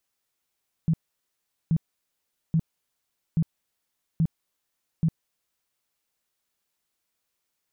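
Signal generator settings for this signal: tone bursts 162 Hz, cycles 9, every 0.83 s, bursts 6, -18 dBFS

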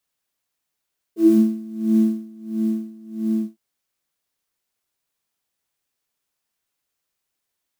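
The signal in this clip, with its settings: synth patch with tremolo A3, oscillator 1 triangle, oscillator 2 sine, interval +7 st, oscillator 2 level -1.5 dB, sub -27 dB, noise -16.5 dB, filter highpass, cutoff 150 Hz, Q 6.5, filter envelope 1.5 oct, filter decay 0.22 s, attack 39 ms, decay 1.18 s, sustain -10.5 dB, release 0.15 s, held 2.26 s, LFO 1.5 Hz, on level 22.5 dB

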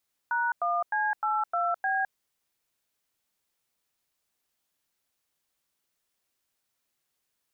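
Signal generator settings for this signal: DTMF "#1C82B", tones 0.21 s, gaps 96 ms, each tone -27 dBFS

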